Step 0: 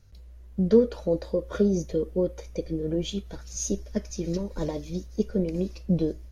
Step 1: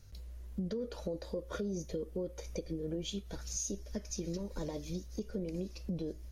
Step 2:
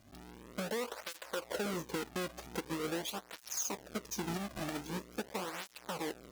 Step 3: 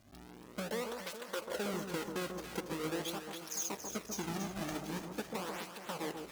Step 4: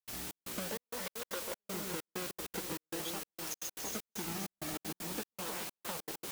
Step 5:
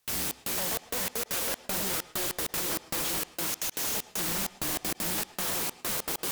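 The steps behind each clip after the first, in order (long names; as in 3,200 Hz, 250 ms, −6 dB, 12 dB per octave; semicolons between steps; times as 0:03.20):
high-shelf EQ 4,400 Hz +6.5 dB; brickwall limiter −18.5 dBFS, peak gain reduction 10.5 dB; downward compressor 3 to 1, threshold −38 dBFS, peak gain reduction 12 dB
each half-wave held at its own peak; low-shelf EQ 200 Hz −10 dB; through-zero flanger with one copy inverted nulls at 0.44 Hz, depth 2.3 ms; level +2 dB
delay that swaps between a low-pass and a high-pass 140 ms, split 1,200 Hz, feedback 72%, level −5 dB; level −1.5 dB
downward compressor 4 to 1, threshold −44 dBFS, peak gain reduction 9.5 dB; bit-depth reduction 8 bits, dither triangular; gate pattern ".xxx..xxxx..xx.x" 195 BPM −60 dB; level +5 dB
sine wavefolder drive 19 dB, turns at −23 dBFS; on a send at −17 dB: convolution reverb RT60 0.30 s, pre-delay 101 ms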